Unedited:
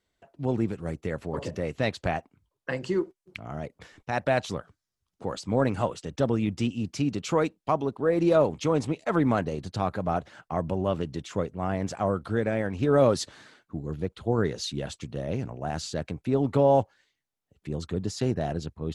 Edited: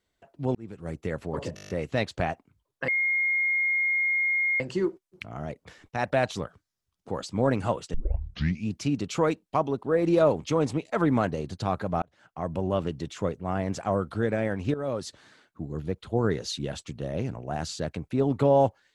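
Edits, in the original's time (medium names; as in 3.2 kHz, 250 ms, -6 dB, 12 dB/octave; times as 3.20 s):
0.55–1.00 s: fade in
1.55 s: stutter 0.02 s, 8 plays
2.74 s: add tone 2.14 kHz -22 dBFS 1.72 s
6.08 s: tape start 0.76 s
10.16–10.77 s: fade in
12.88–13.95 s: fade in, from -14.5 dB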